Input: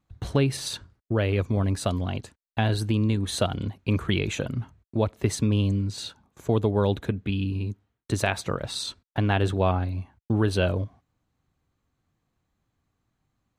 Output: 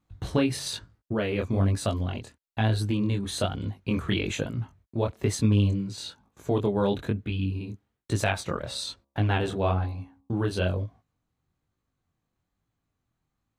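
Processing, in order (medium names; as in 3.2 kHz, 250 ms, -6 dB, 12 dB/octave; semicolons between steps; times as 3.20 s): chorus 1.1 Hz, delay 18 ms, depth 7.6 ms; gain riding 2 s; 8.60–10.34 s: de-hum 68.45 Hz, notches 17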